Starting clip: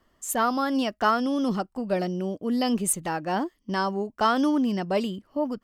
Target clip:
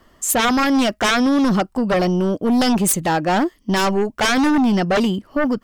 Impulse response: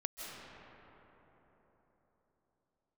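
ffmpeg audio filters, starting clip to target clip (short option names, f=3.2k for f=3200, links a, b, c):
-filter_complex "[0:a]asettb=1/sr,asplit=3[a][b][c];[a]atrim=end=3.764[d];[b]atrim=start=3.76:end=4.21,asetpts=PTS-STARTPTS,afade=t=in:d=0.004:c=qsin,afade=t=out:st=0.446:d=0.004:c=qsin,aeval=exprs='0.188*(cos(1*acos(clip(val(0)/0.188,-1,1)))-cos(1*PI/2))+0.0211*(cos(6*acos(clip(val(0)/0.188,-1,1)))-cos(6*PI/2))':c=same[e];[c]atrim=start=4.206[f];[d][e]acrossfade=d=0.004:c1=hsin:c2=qsin[g];[g][f]acrossfade=d=0.004:c1=qsin:c2=hsin,aeval=exprs='0.316*sin(PI/2*3.98*val(0)/0.316)':c=same,volume=-3dB"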